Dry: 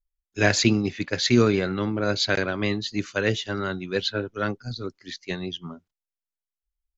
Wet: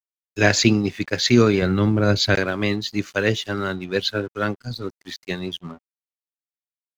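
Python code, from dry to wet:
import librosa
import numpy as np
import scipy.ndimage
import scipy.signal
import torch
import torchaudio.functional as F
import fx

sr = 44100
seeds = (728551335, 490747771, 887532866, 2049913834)

y = fx.low_shelf(x, sr, hz=170.0, db=11.5, at=(1.62, 2.35))
y = np.sign(y) * np.maximum(np.abs(y) - 10.0 ** (-49.0 / 20.0), 0.0)
y = F.gain(torch.from_numpy(y), 3.5).numpy()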